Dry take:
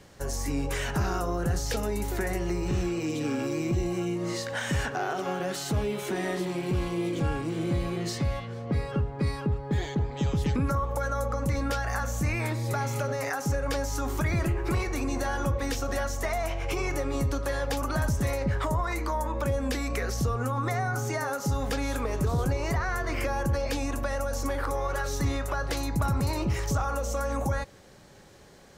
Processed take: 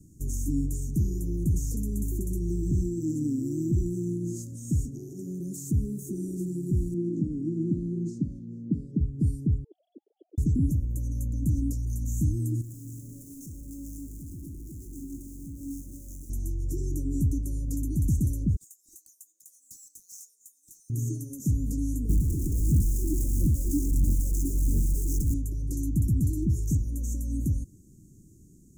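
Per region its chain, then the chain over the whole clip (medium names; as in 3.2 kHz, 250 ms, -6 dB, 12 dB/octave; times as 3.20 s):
6.94–9.01 s: low-pass 3.7 kHz + resonant low shelf 130 Hz -12 dB, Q 1.5
9.64–10.38 s: formants replaced by sine waves + high-pass 650 Hz 24 dB/octave
12.61–16.30 s: Schmitt trigger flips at -48.5 dBFS + feedback comb 280 Hz, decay 0.66 s, mix 80%
18.56–20.90 s: median filter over 3 samples + high-pass 1.4 kHz 24 dB/octave + overload inside the chain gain 31.5 dB
22.09–25.34 s: Schmitt trigger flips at -40.5 dBFS + phaser 1.5 Hz, delay 3.4 ms, feedback 59%
whole clip: Chebyshev band-stop 320–6700 Hz, order 4; bass shelf 470 Hz +3.5 dB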